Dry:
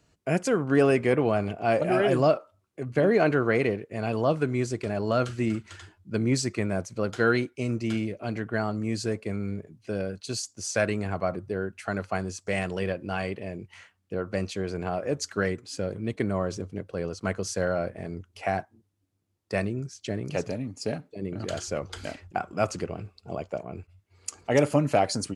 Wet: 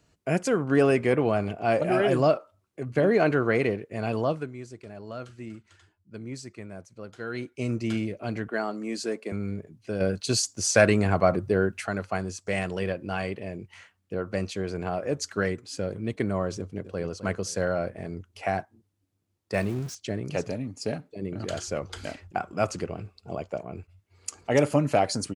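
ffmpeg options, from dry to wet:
-filter_complex "[0:a]asettb=1/sr,asplit=3[a][b][c];[a]atrim=end=8.484[d];[b]atrim=start=8.48:end=9.32,asetpts=PTS-STARTPTS,afade=t=in:d=0.004:c=qsin,afade=t=out:st=0.836:d=0.004:c=qsin,highpass=f=230:w=0.5412,highpass=f=230:w=1.3066[e];[c]atrim=start=9.316[f];[d][e]acrossfade=d=0.004:c1=hsin:c2=qsin[g];[g][f]acrossfade=d=0.004:c1=qsin:c2=hsin,asplit=3[h][i][j];[h]afade=t=out:st=10:d=0.02[k];[i]acontrast=86,afade=t=in:st=10:d=0.02,afade=t=out:st=11.85:d=0.02[l];[j]afade=t=in:st=11.85:d=0.02[m];[k][l][m]amix=inputs=3:normalize=0,asplit=2[n][o];[o]afade=t=in:st=16.58:d=0.01,afade=t=out:st=17.09:d=0.01,aecho=0:1:260|520|780:0.251189|0.0753566|0.022607[p];[n][p]amix=inputs=2:normalize=0,asettb=1/sr,asplit=3[q][r][s];[q]atrim=end=19.544[t];[r]atrim=start=19.54:end=19.95,asetpts=PTS-STARTPTS,afade=t=in:d=0.004:c=qsin,afade=t=out:st=0.406:d=0.004:c=qsin,aeval=exprs='val(0)+0.5*0.0133*sgn(val(0))':c=same[u];[s]atrim=start=19.946[v];[t][u]acrossfade=d=0.004:c1=hsin:c2=qsin[w];[w][v]acrossfade=d=0.004:c1=qsin:c2=hsin,asplit=3[x][y][z];[x]atrim=end=4.52,asetpts=PTS-STARTPTS,afade=t=out:st=4.18:d=0.34:silence=0.223872[aa];[y]atrim=start=4.52:end=7.3,asetpts=PTS-STARTPTS,volume=-13dB[ab];[z]atrim=start=7.3,asetpts=PTS-STARTPTS,afade=t=in:d=0.34:silence=0.223872[ac];[aa][ab][ac]concat=n=3:v=0:a=1"

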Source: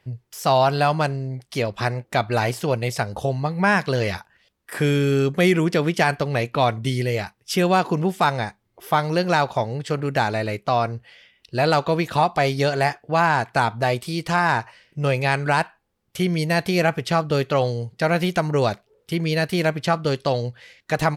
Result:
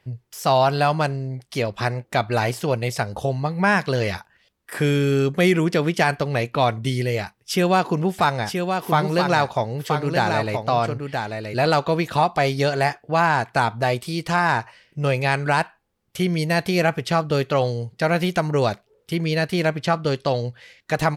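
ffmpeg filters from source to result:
-filter_complex "[0:a]asettb=1/sr,asplit=3[a][b][c];[a]atrim=end=7.214[d];[b]atrim=start=7.21:end=11.66,asetpts=PTS-STARTPTS,afade=t=in:d=0.004:c=qsin,afade=t=out:st=4.446:d=0.004:c=qsin,aecho=1:1:975:0.531,atrim=end_sample=196245[e];[c]atrim=start=11.656[f];[d][e]acrossfade=d=0.004:c1=hsin:c2=qsin[g];[g][f]acrossfade=d=0.004:c1=qsin:c2=hsin,asettb=1/sr,asplit=3[h][i][j];[h]atrim=end=19.264[k];[i]atrim=start=19.26:end=20.48,asetpts=PTS-STARTPTS,afade=t=in:d=0.004:c=qsin,afade=t=out:st=1.216:d=0.004:c=qsin,highshelf=f=11k:g=-7[l];[j]atrim=start=20.476[m];[k][l]acrossfade=d=0.004:c1=hsin:c2=qsin[n];[n][m]acrossfade=d=0.004:c1=qsin:c2=hsin"

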